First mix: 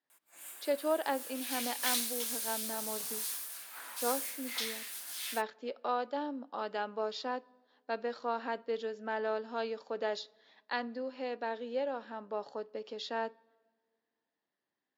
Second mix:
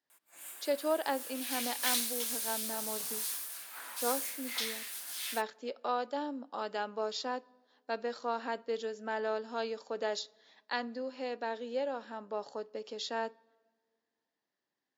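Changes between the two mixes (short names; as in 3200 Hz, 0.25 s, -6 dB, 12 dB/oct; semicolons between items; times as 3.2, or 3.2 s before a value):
speech: remove LPF 4200 Hz 12 dB/oct; background: send on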